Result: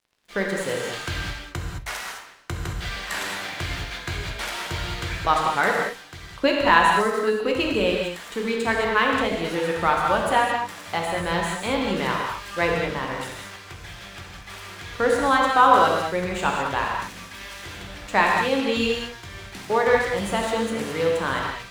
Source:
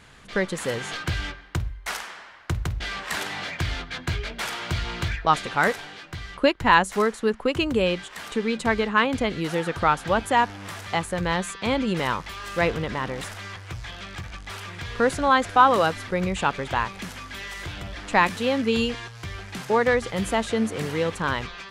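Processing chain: tone controls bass -5 dB, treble 0 dB; crossover distortion -44.5 dBFS; gated-style reverb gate 240 ms flat, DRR -1 dB; trim -1 dB

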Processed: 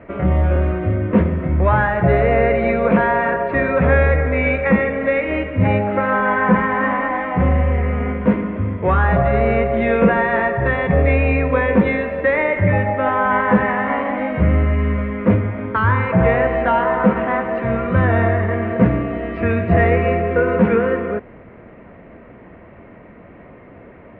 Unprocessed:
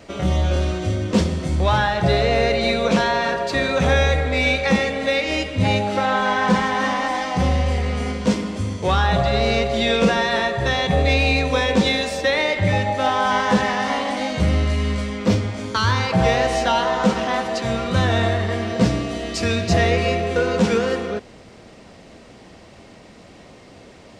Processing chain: steep low-pass 2.2 kHz 36 dB/octave; band-stop 790 Hz, Q 12; trim +3.5 dB

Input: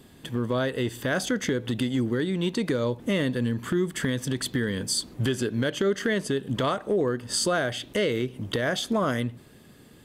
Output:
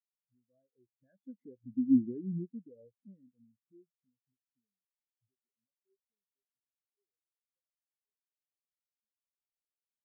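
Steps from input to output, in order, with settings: recorder AGC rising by 38 dB/s; Doppler pass-by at 2.01 s, 8 m/s, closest 4.6 m; spectral contrast expander 4:1

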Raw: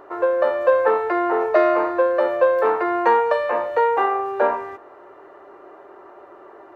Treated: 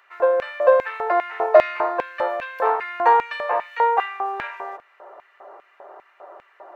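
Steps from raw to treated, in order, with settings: LFO high-pass square 2.5 Hz 640–2300 Hz; 1.76–4.44 s: peaking EQ 570 Hz -11 dB 0.25 oct; trim -1.5 dB

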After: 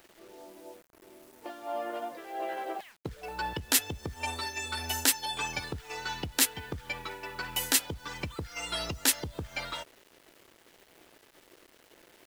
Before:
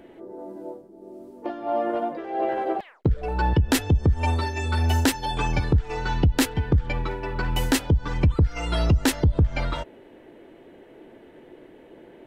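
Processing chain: tilt EQ +4 dB/octave; word length cut 8-bit, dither none; trim -7.5 dB

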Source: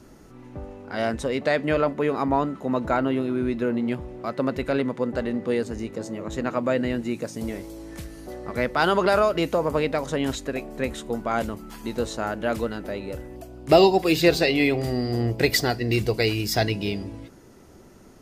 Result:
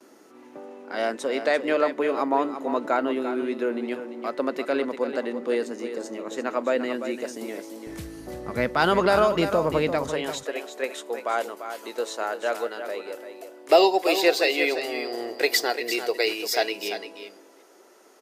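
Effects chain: gate with hold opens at -42 dBFS; high-pass 280 Hz 24 dB/octave, from 7.87 s 61 Hz, from 10.09 s 390 Hz; delay 344 ms -9.5 dB

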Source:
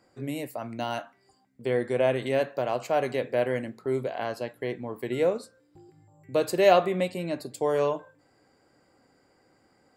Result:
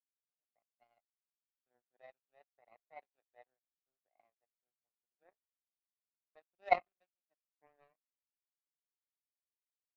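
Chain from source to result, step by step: vowel filter a; power-law waveshaper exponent 3; tape noise reduction on one side only decoder only

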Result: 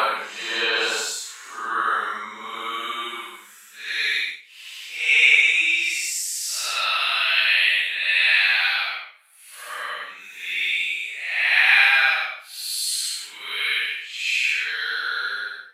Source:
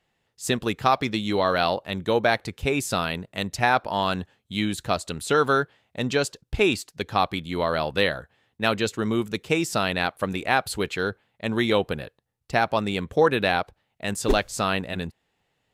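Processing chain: high-pass sweep 940 Hz -> 2.2 kHz, 8.85–9.45 s; Paulstretch 6.5×, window 0.10 s, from 8.72 s; trim +4.5 dB

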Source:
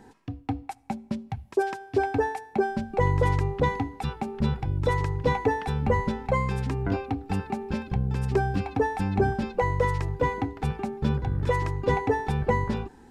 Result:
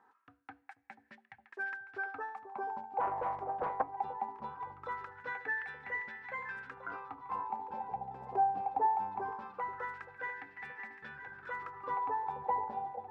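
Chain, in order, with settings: echo whose repeats swap between lows and highs 485 ms, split 890 Hz, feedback 79%, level -9.5 dB; wah-wah 0.21 Hz 760–1800 Hz, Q 7.4; 3.00–3.97 s: loudspeaker Doppler distortion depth 0.37 ms; trim +3 dB

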